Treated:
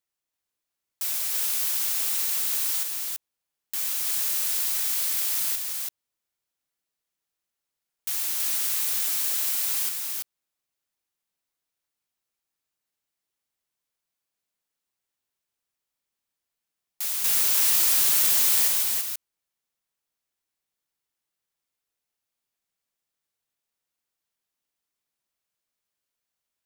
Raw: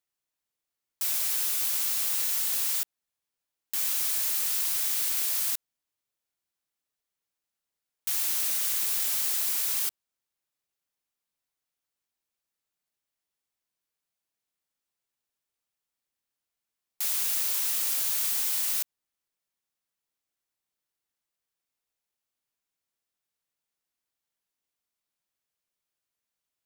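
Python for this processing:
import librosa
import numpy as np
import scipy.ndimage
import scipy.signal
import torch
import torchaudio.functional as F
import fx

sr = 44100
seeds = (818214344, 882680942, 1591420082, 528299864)

p1 = fx.leveller(x, sr, passes=2, at=(17.24, 18.68))
y = p1 + fx.echo_single(p1, sr, ms=332, db=-3.0, dry=0)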